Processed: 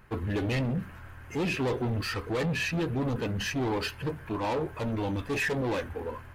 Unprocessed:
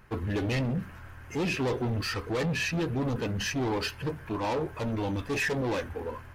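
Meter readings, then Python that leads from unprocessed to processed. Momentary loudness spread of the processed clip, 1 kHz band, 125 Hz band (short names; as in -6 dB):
7 LU, 0.0 dB, 0.0 dB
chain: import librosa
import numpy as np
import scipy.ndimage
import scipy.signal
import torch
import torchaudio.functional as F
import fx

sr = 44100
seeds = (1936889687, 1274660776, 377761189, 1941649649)

y = fx.peak_eq(x, sr, hz=5600.0, db=-4.0, octaves=0.52)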